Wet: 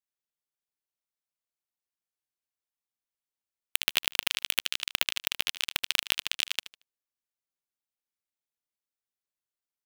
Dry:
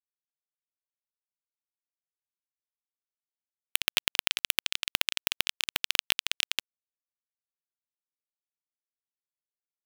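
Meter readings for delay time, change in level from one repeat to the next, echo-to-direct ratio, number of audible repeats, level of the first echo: 76 ms, -12.0 dB, -13.5 dB, 2, -14.0 dB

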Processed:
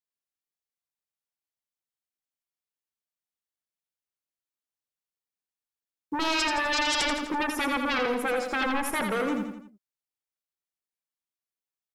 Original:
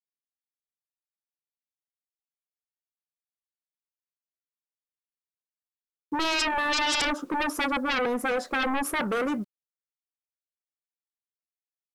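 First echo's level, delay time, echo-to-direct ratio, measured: -6.0 dB, 84 ms, -5.0 dB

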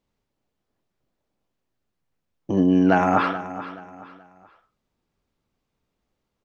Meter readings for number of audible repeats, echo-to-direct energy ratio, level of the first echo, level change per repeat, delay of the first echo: 3, -13.5 dB, -14.0 dB, -9.5 dB, 428 ms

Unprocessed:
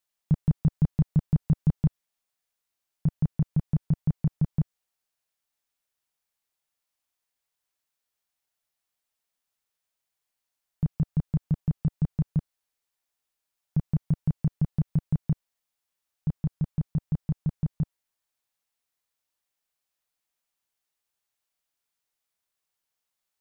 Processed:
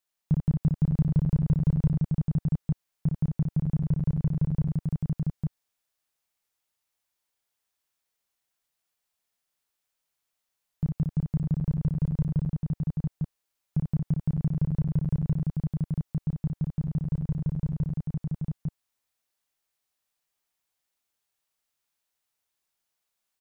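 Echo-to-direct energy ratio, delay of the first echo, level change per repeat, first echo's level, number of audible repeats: 1.0 dB, 59 ms, no regular repeats, -5.0 dB, 3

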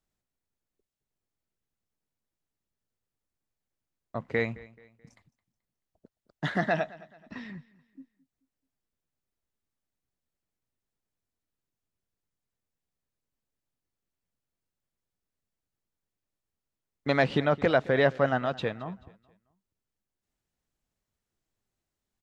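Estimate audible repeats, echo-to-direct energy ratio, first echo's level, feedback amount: 2, -20.5 dB, -21.0 dB, 38%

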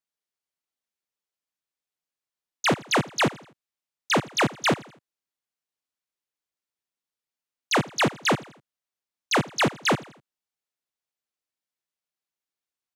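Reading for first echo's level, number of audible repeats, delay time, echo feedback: -20.5 dB, 3, 83 ms, 44%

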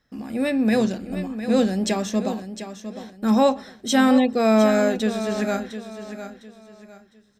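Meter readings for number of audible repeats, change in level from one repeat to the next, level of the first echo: 3, -10.5 dB, -11.0 dB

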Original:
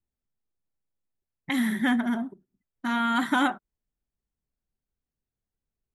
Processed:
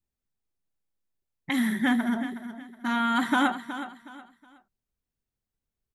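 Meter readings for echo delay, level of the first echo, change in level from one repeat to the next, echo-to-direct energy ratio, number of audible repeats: 368 ms, -12.0 dB, -10.5 dB, -11.5 dB, 3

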